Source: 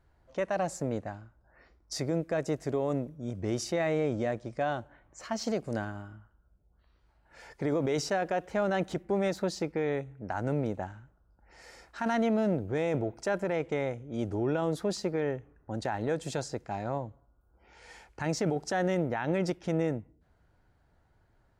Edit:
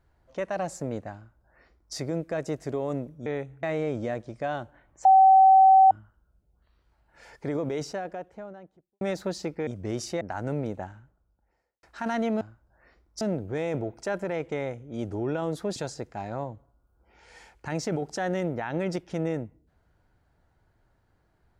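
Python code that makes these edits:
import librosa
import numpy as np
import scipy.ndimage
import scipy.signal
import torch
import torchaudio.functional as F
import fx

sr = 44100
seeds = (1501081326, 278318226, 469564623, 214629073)

y = fx.studio_fade_out(x, sr, start_s=7.51, length_s=1.67)
y = fx.studio_fade_out(y, sr, start_s=10.79, length_s=1.04)
y = fx.edit(y, sr, fx.duplicate(start_s=1.15, length_s=0.8, to_s=12.41),
    fx.swap(start_s=3.26, length_s=0.54, other_s=9.84, other_length_s=0.37),
    fx.bleep(start_s=5.22, length_s=0.86, hz=766.0, db=-12.0),
    fx.cut(start_s=14.96, length_s=1.34), tone=tone)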